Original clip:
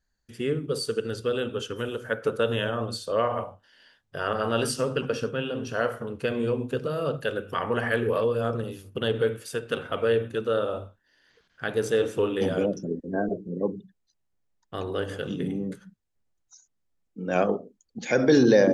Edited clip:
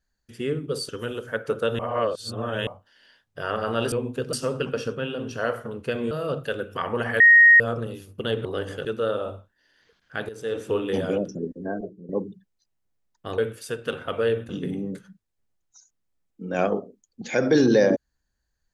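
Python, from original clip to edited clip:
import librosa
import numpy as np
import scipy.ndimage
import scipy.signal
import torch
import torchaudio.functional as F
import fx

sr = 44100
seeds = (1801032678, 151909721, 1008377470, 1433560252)

y = fx.edit(x, sr, fx.cut(start_s=0.89, length_s=0.77),
    fx.reverse_span(start_s=2.56, length_s=0.88),
    fx.move(start_s=6.47, length_s=0.41, to_s=4.69),
    fx.bleep(start_s=7.97, length_s=0.4, hz=1870.0, db=-9.0),
    fx.swap(start_s=9.22, length_s=1.11, other_s=14.86, other_length_s=0.4),
    fx.fade_in_from(start_s=11.77, length_s=0.45, floor_db=-17.5),
    fx.fade_out_to(start_s=12.95, length_s=0.62, floor_db=-11.5), tone=tone)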